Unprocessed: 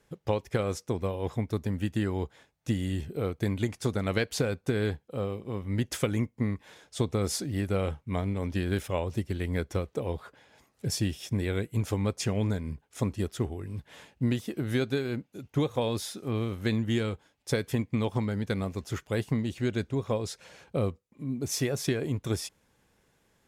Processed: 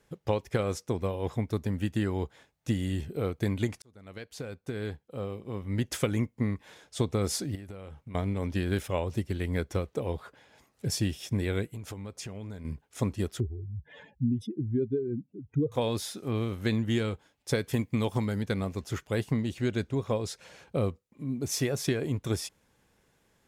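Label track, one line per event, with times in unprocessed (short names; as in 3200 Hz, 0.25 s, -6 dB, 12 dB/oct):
3.820000	5.950000	fade in
7.550000	8.150000	compressor 16:1, threshold -38 dBFS
11.700000	12.650000	compressor 5:1, threshold -37 dBFS
13.400000	15.720000	spectral contrast raised exponent 2.7
17.730000	18.430000	high shelf 7100 Hz +10.5 dB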